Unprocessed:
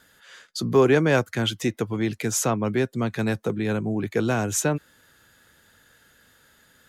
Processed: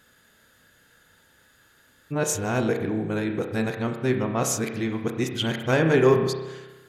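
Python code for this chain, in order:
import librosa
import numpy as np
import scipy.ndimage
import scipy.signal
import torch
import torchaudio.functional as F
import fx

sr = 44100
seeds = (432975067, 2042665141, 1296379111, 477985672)

y = x[::-1].copy()
y = fx.rev_spring(y, sr, rt60_s=1.2, pass_ms=(31,), chirp_ms=35, drr_db=4.5)
y = y * librosa.db_to_amplitude(-2.0)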